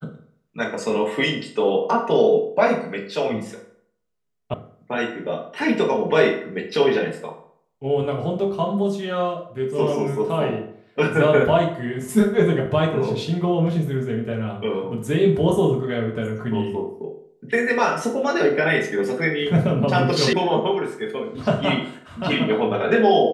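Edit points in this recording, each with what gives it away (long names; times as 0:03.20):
0:04.54: cut off before it has died away
0:20.33: cut off before it has died away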